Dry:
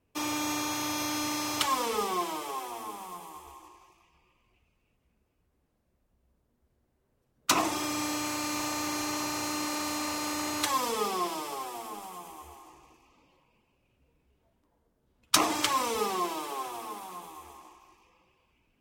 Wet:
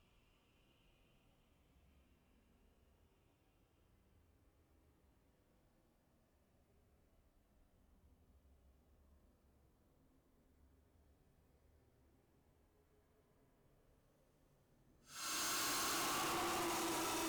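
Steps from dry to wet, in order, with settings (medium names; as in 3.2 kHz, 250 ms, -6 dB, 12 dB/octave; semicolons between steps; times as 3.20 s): Paulstretch 6.2×, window 0.25 s, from 4.73 s; saturation -39.5 dBFS, distortion -4 dB; speed mistake 44.1 kHz file played as 48 kHz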